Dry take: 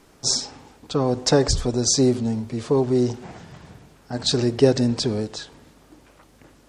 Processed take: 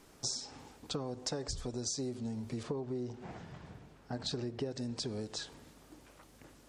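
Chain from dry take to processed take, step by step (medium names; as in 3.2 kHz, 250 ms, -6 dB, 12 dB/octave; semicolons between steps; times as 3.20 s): treble shelf 5 kHz +4 dB, from 2.63 s -9 dB, from 4.71 s +4.5 dB; compression 10:1, threshold -28 dBFS, peak gain reduction 18 dB; trim -6.5 dB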